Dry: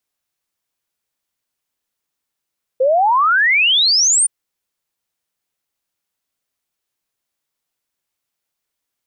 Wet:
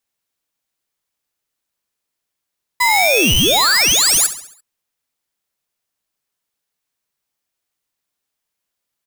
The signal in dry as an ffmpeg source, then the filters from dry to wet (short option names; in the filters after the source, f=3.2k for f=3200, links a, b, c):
-f lavfi -i "aevalsrc='0.299*clip(min(t,1.47-t)/0.01,0,1)*sin(2*PI*500*1.47/log(9400/500)*(exp(log(9400/500)*t/1.47)-1))':d=1.47:s=44100"
-filter_complex "[0:a]asplit=2[a][b];[b]aecho=0:1:68|136|204|272|340:0.224|0.112|0.056|0.028|0.014[c];[a][c]amix=inputs=2:normalize=0,aeval=exprs='val(0)*sgn(sin(2*PI*1500*n/s))':c=same"